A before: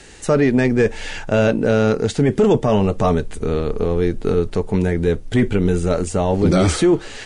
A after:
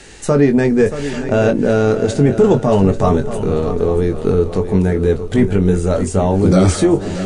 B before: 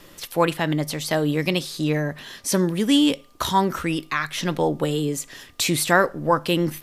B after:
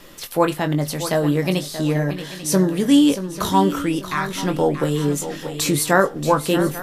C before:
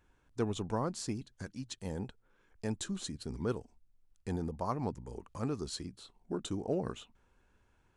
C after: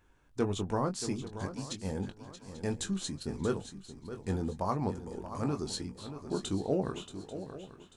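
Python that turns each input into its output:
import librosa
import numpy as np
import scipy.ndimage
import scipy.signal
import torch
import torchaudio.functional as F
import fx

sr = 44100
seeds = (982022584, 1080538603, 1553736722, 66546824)

p1 = fx.hum_notches(x, sr, base_hz=60, count=2)
p2 = fx.doubler(p1, sr, ms=21.0, db=-8.0)
p3 = p2 + fx.echo_swing(p2, sr, ms=840, ratio=3, feedback_pct=30, wet_db=-11.5, dry=0)
p4 = fx.dynamic_eq(p3, sr, hz=2700.0, q=0.73, threshold_db=-37.0, ratio=4.0, max_db=-6)
y = p4 * 10.0 ** (2.5 / 20.0)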